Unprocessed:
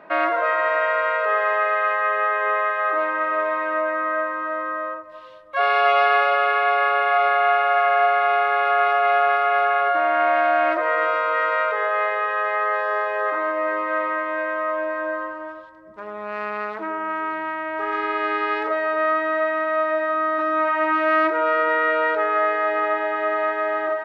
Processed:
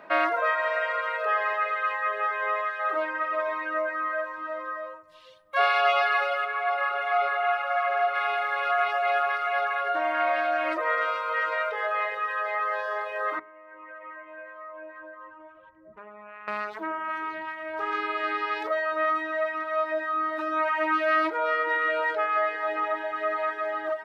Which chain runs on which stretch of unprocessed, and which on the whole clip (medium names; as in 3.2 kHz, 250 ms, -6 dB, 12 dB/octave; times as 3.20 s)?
6.44–8.14 s: treble shelf 2.3 kHz -5 dB + whistle 1.3 kHz -36 dBFS
13.39–16.48 s: steep low-pass 2.8 kHz + compression 2.5:1, threshold -39 dBFS
whole clip: reverb removal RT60 1.6 s; treble shelf 3.9 kHz +10.5 dB; hum notches 60/120/180/240/300/360/420 Hz; trim -2.5 dB